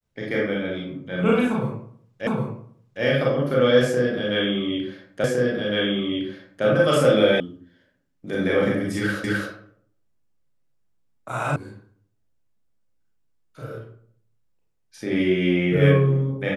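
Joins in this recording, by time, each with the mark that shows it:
2.27 repeat of the last 0.76 s
5.24 repeat of the last 1.41 s
7.4 sound cut off
9.24 repeat of the last 0.26 s
11.56 sound cut off

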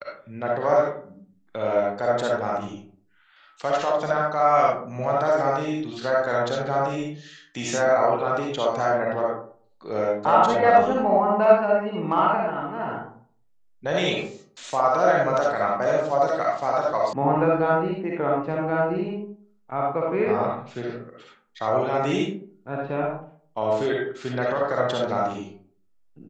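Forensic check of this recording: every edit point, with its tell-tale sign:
17.13 sound cut off

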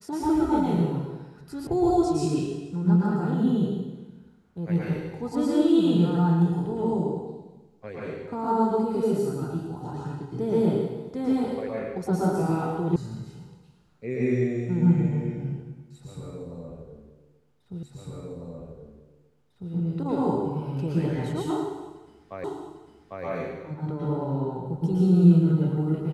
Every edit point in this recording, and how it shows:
1.67 sound cut off
12.96 sound cut off
17.83 repeat of the last 1.9 s
22.44 repeat of the last 0.8 s

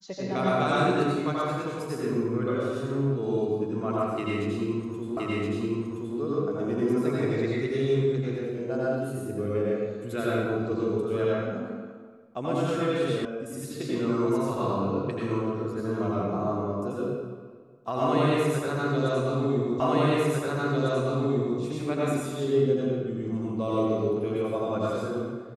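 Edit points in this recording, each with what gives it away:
5.17 repeat of the last 1.02 s
13.25 sound cut off
19.8 repeat of the last 1.8 s

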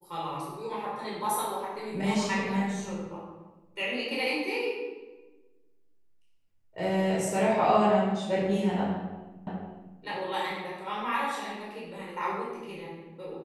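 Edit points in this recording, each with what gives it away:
9.47 repeat of the last 0.5 s

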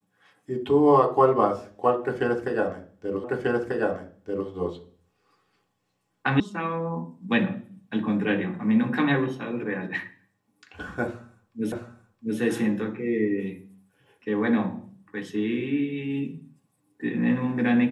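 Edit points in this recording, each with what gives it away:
3.24 repeat of the last 1.24 s
6.4 sound cut off
11.72 repeat of the last 0.67 s

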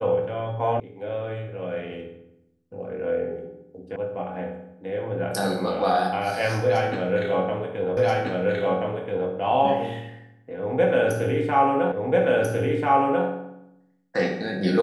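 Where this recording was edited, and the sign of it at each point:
0.8 sound cut off
3.96 sound cut off
7.97 repeat of the last 1.33 s
11.92 repeat of the last 1.34 s

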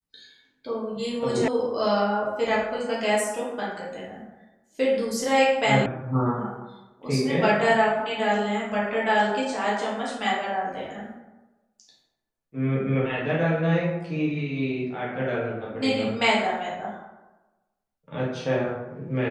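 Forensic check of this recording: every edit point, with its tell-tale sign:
1.48 sound cut off
5.86 sound cut off

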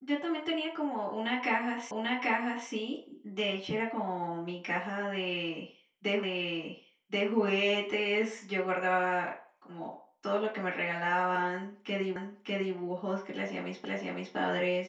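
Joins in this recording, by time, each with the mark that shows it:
1.91 repeat of the last 0.79 s
6.23 repeat of the last 1.08 s
12.16 repeat of the last 0.6 s
13.85 repeat of the last 0.51 s

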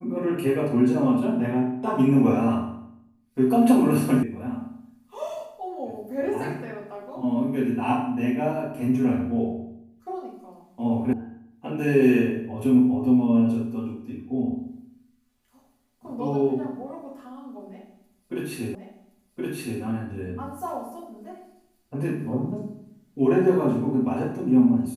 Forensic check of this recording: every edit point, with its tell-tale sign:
4.23 sound cut off
11.13 sound cut off
18.75 repeat of the last 1.07 s

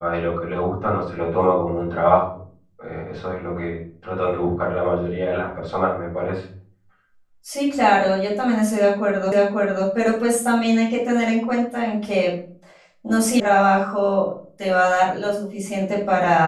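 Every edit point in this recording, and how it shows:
9.32 repeat of the last 0.54 s
13.4 sound cut off

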